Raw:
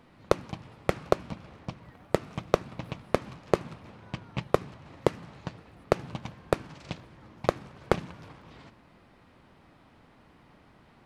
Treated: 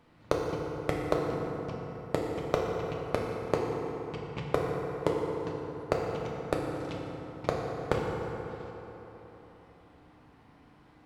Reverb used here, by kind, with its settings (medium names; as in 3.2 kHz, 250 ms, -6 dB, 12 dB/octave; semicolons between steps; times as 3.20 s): FDN reverb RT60 3.8 s, high-frequency decay 0.45×, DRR -2 dB; trim -5.5 dB